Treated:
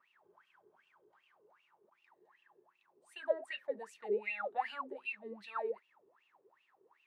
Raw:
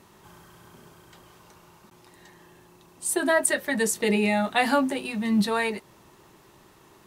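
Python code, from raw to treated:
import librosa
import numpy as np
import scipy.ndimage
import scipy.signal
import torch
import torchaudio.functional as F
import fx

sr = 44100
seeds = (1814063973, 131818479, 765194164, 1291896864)

y = fx.wah_lfo(x, sr, hz=2.6, low_hz=400.0, high_hz=2800.0, q=17.0)
y = F.gain(torch.from_numpy(y), 1.0).numpy()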